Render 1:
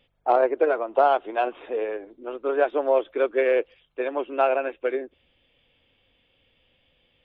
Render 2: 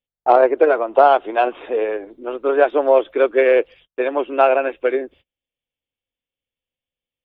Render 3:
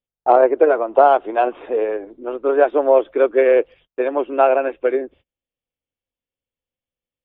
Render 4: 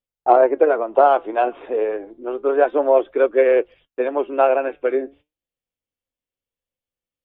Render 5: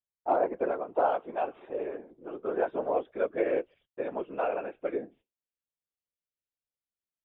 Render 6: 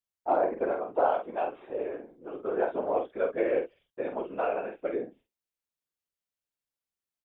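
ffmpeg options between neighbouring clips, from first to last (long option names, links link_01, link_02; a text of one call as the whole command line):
ffmpeg -i in.wav -af "agate=range=-33dB:threshold=-51dB:ratio=16:detection=peak,volume=7dB" out.wav
ffmpeg -i in.wav -af "highshelf=frequency=2300:gain=-11.5,volume=1dB" out.wav
ffmpeg -i in.wav -af "flanger=delay=1.6:depth=6:regen=83:speed=0.3:shape=triangular,volume=3dB" out.wav
ffmpeg -i in.wav -af "afftfilt=real='hypot(re,im)*cos(2*PI*random(0))':imag='hypot(re,im)*sin(2*PI*random(1))':win_size=512:overlap=0.75,volume=-7dB" out.wav
ffmpeg -i in.wav -filter_complex "[0:a]asplit=2[link_01][link_02];[link_02]adelay=47,volume=-6.5dB[link_03];[link_01][link_03]amix=inputs=2:normalize=0" out.wav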